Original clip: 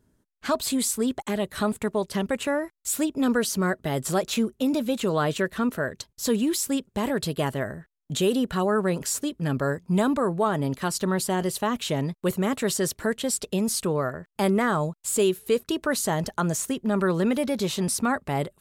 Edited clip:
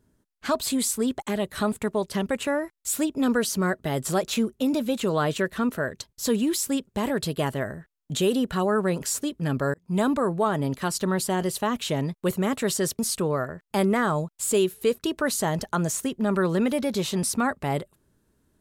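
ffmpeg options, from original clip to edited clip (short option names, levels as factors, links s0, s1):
-filter_complex "[0:a]asplit=3[s0][s1][s2];[s0]atrim=end=9.74,asetpts=PTS-STARTPTS,afade=t=out:st=9.736:d=0.004:c=hsin[s3];[s1]atrim=start=9.74:end=12.992,asetpts=PTS-STARTPTS,afade=t=in:d=0.29[s4];[s2]atrim=start=13.638[s5];[s3][s4]concat=n=2:v=0:a=1[s6];[s6][s5]acrossfade=d=0.004:c1=hsin:c2=hsin"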